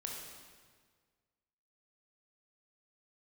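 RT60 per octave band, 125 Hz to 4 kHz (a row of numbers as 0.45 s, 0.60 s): 1.9 s, 1.7 s, 1.7 s, 1.6 s, 1.5 s, 1.4 s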